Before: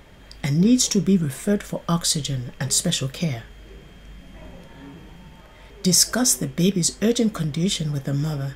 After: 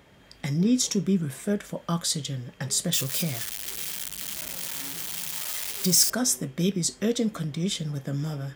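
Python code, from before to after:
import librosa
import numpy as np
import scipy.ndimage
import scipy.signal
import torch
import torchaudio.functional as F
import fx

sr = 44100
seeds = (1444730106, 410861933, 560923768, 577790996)

y = fx.crossing_spikes(x, sr, level_db=-14.0, at=(2.93, 6.1))
y = scipy.signal.sosfilt(scipy.signal.butter(2, 88.0, 'highpass', fs=sr, output='sos'), y)
y = y * librosa.db_to_amplitude(-5.5)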